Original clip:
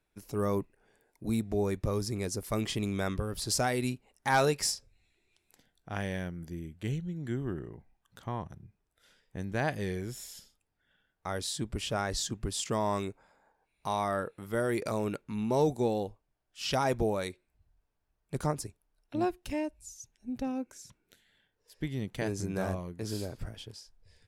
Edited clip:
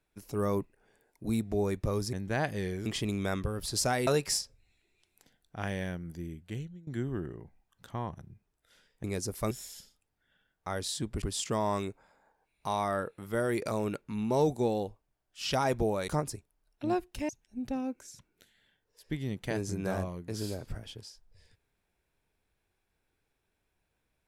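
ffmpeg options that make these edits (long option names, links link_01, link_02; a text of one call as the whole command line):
ffmpeg -i in.wav -filter_complex "[0:a]asplit=10[link_01][link_02][link_03][link_04][link_05][link_06][link_07][link_08][link_09][link_10];[link_01]atrim=end=2.132[link_11];[link_02]atrim=start=9.368:end=10.102[link_12];[link_03]atrim=start=2.598:end=3.812[link_13];[link_04]atrim=start=4.398:end=7.2,asetpts=PTS-STARTPTS,afade=type=out:start_time=2.242:duration=0.56:silence=0.112202[link_14];[link_05]atrim=start=7.2:end=9.372,asetpts=PTS-STARTPTS,afade=type=in:duration=0.004:curve=hsin:silence=0.112202[link_15];[link_06]atrim=start=2.128:end=2.602[link_16];[link_07]atrim=start=10.098:end=11.812[link_17];[link_08]atrim=start=12.418:end=17.282[link_18];[link_09]atrim=start=18.388:end=19.602[link_19];[link_10]atrim=start=19.998[link_20];[link_11][link_12]acrossfade=duration=0.004:curve1=hsin:curve2=hsin[link_21];[link_21][link_13]acrossfade=duration=0.004:curve1=hsin:curve2=hsin[link_22];[link_14][link_15]concat=n=2:v=0:a=1[link_23];[link_22][link_23]acrossfade=duration=0.004:curve1=hsin:curve2=hsin[link_24];[link_24][link_16]acrossfade=duration=0.004:curve1=hsin:curve2=hsin[link_25];[link_25][link_17]acrossfade=duration=0.004:curve1=hsin:curve2=hsin[link_26];[link_26][link_18]acrossfade=duration=0.004:curve1=hsin:curve2=hsin[link_27];[link_27][link_19]acrossfade=duration=0.004:curve1=hsin:curve2=hsin[link_28];[link_28][link_20]acrossfade=duration=0.004:curve1=hsin:curve2=hsin" out.wav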